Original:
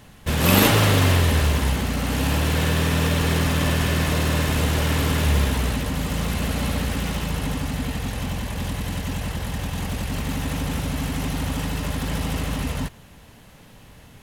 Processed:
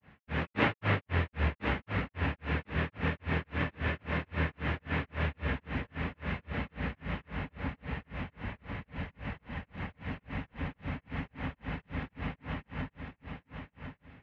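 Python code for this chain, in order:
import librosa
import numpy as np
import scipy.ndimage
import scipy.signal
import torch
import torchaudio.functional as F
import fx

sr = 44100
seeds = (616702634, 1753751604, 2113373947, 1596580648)

p1 = scipy.signal.sosfilt(scipy.signal.butter(2, 57.0, 'highpass', fs=sr, output='sos'), x)
p2 = fx.granulator(p1, sr, seeds[0], grain_ms=203.0, per_s=3.7, spray_ms=33.0, spread_st=0)
p3 = fx.ladder_lowpass(p2, sr, hz=2600.0, resonance_pct=40)
y = p3 + fx.echo_feedback(p3, sr, ms=1052, feedback_pct=25, wet_db=-6.0, dry=0)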